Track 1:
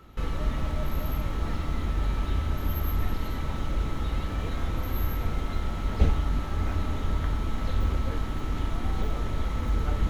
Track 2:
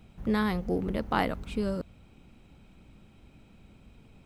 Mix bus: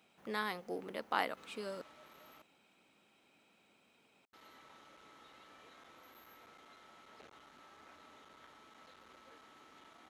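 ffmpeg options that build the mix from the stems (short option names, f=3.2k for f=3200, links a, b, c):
-filter_complex "[0:a]lowpass=11k,volume=21dB,asoftclip=hard,volume=-21dB,adelay=1200,volume=-17.5dB,asplit=3[a][b][c];[a]atrim=end=2.42,asetpts=PTS-STARTPTS,afade=t=out:st=2.416:d=0.004:c=hsin[d];[b]atrim=start=2.42:end=4.33,asetpts=PTS-STARTPTS,volume=0[e];[c]atrim=start=4.33,asetpts=PTS-STARTPTS,afade=t=in:d=0.004:c=hsin[f];[d][e][f]concat=n=3:v=0:a=1[g];[1:a]volume=-3.5dB[h];[g][h]amix=inputs=2:normalize=0,highpass=300,lowshelf=f=490:g=-10.5"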